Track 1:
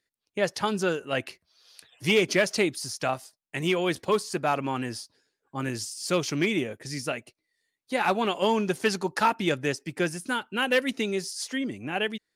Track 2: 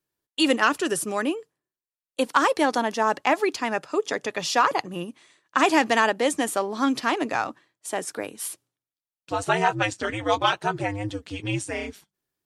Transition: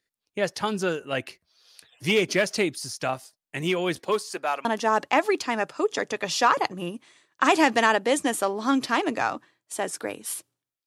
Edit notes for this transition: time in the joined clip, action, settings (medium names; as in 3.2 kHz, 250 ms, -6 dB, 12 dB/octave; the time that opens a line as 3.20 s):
track 1
3.99–4.65 s: high-pass 190 Hz -> 790 Hz
4.65 s: go over to track 2 from 2.79 s